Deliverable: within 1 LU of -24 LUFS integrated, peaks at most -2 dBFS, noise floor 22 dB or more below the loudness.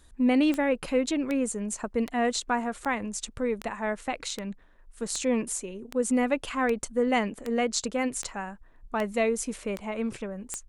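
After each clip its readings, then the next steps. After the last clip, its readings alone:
clicks found 14; loudness -28.5 LUFS; peak level -10.5 dBFS; loudness target -24.0 LUFS
-> de-click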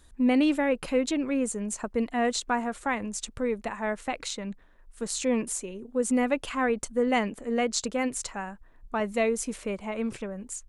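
clicks found 0; loudness -28.5 LUFS; peak level -10.5 dBFS; loudness target -24.0 LUFS
-> trim +4.5 dB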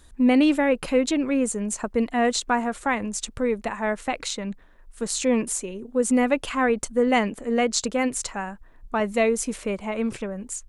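loudness -24.0 LUFS; peak level -6.0 dBFS; noise floor -50 dBFS

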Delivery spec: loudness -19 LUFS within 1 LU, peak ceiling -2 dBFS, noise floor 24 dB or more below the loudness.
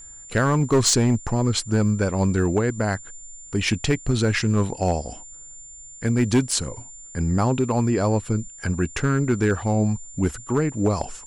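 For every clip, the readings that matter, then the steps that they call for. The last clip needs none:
clipped samples 0.9%; clipping level -12.5 dBFS; steady tone 7.2 kHz; tone level -40 dBFS; loudness -22.5 LUFS; peak level -12.5 dBFS; loudness target -19.0 LUFS
-> clip repair -12.5 dBFS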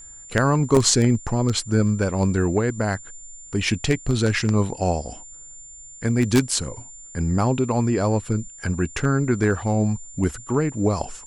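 clipped samples 0.0%; steady tone 7.2 kHz; tone level -40 dBFS
-> band-stop 7.2 kHz, Q 30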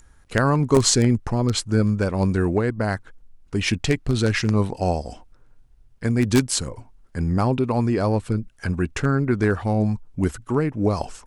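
steady tone not found; loudness -22.0 LUFS; peak level -3.5 dBFS; loudness target -19.0 LUFS
-> trim +3 dB; peak limiter -2 dBFS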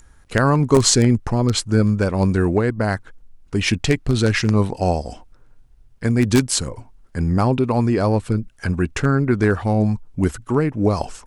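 loudness -19.5 LUFS; peak level -2.0 dBFS; noise floor -50 dBFS

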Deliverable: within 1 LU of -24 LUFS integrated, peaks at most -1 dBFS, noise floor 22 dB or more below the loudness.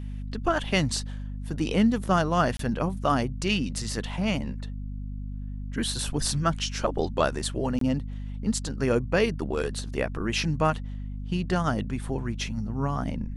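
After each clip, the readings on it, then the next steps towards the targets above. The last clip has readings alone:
dropouts 2; longest dropout 23 ms; hum 50 Hz; highest harmonic 250 Hz; hum level -32 dBFS; loudness -28.0 LUFS; peak level -8.5 dBFS; loudness target -24.0 LUFS
-> interpolate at 2.57/7.79 s, 23 ms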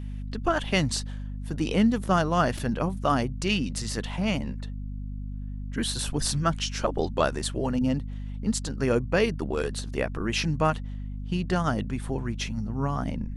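dropouts 0; hum 50 Hz; highest harmonic 250 Hz; hum level -32 dBFS
-> hum notches 50/100/150/200/250 Hz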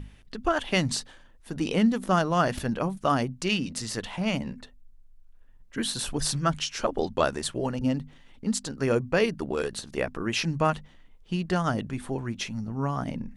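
hum not found; loudness -28.0 LUFS; peak level -8.5 dBFS; loudness target -24.0 LUFS
-> trim +4 dB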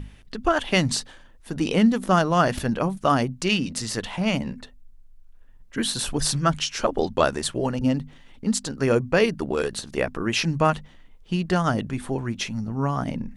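loudness -24.0 LUFS; peak level -4.5 dBFS; noise floor -49 dBFS

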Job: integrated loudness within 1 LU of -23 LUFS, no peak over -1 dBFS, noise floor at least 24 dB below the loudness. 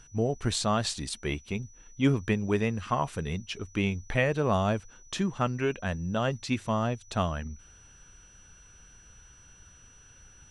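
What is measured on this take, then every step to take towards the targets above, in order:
steady tone 5.9 kHz; tone level -55 dBFS; loudness -30.0 LUFS; peak level -12.5 dBFS; loudness target -23.0 LUFS
-> band-stop 5.9 kHz, Q 30; trim +7 dB

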